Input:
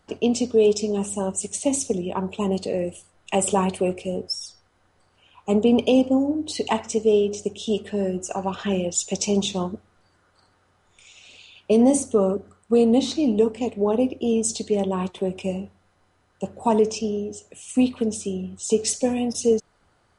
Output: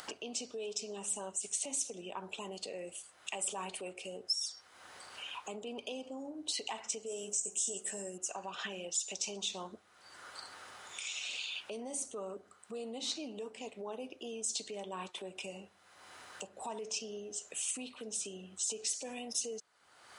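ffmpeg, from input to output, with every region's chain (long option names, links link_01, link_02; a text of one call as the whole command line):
ffmpeg -i in.wav -filter_complex "[0:a]asettb=1/sr,asplit=3[link_01][link_02][link_03];[link_01]atrim=end=7.064[link_04];[link_02]atrim=start=7.06:end=8.18,asetpts=PTS-STARTPTS,afade=type=in:duration=0.004:curve=qsin,afade=type=out:start_time=1.116:duration=0.004:curve=qsin,highshelf=frequency=5500:width_type=q:width=3:gain=13,asplit=2[link_05][link_06];[link_06]adelay=16,volume=-6dB[link_07];[link_05][link_07]amix=inputs=2:normalize=0,atrim=end_sample=49392[link_08];[link_03]atrim=start=8.176[link_09];[link_04][link_08]acrossfade=duration=0.004:curve1=hsin:curve2=qsin[link_10];[link_10][link_09]acrossfade=duration=0.004:curve1=qsin:curve2=hsin,acompressor=mode=upward:threshold=-20dB:ratio=2.5,alimiter=limit=-18dB:level=0:latency=1:release=88,highpass=frequency=1500:poles=1,volume=-5.5dB" out.wav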